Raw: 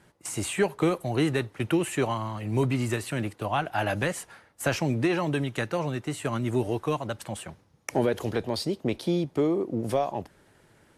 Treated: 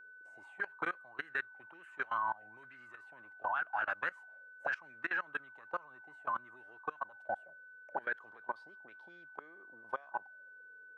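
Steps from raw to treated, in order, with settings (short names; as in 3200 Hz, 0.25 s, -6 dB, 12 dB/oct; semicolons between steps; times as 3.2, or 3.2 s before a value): auto-wah 450–1600 Hz, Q 9, up, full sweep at -21.5 dBFS; whine 1500 Hz -48 dBFS; level quantiser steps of 22 dB; gain +10.5 dB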